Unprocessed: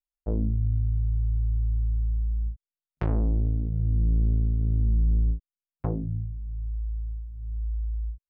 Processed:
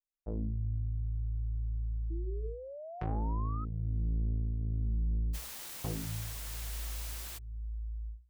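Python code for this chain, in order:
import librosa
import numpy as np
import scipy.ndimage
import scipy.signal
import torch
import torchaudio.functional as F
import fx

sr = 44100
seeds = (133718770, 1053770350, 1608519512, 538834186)

y = fx.spec_paint(x, sr, seeds[0], shape='rise', start_s=2.1, length_s=1.55, low_hz=320.0, high_hz=1300.0, level_db=-36.0)
y = fx.quant_dither(y, sr, seeds[1], bits=6, dither='triangular', at=(5.33, 7.37), fade=0.02)
y = fx.hum_notches(y, sr, base_hz=60, count=7)
y = y * librosa.db_to_amplitude(-8.5)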